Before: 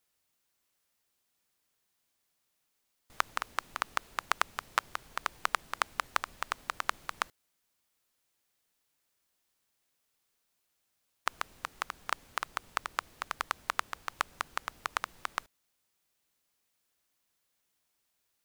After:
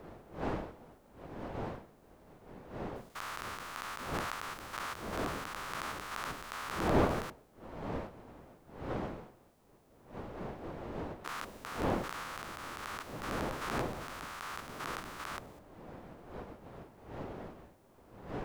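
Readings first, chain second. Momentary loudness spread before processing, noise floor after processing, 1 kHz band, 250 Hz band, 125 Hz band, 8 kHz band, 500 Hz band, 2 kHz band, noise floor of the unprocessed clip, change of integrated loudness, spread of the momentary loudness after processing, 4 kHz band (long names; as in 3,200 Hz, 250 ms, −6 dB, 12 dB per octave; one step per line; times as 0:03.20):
6 LU, −62 dBFS, −3.5 dB, +19.0 dB, +19.5 dB, −3.5 dB, +11.0 dB, −5.0 dB, −79 dBFS, −3.5 dB, 17 LU, −4.5 dB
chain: spectrum averaged block by block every 200 ms
wind on the microphone 610 Hz −45 dBFS
level +3.5 dB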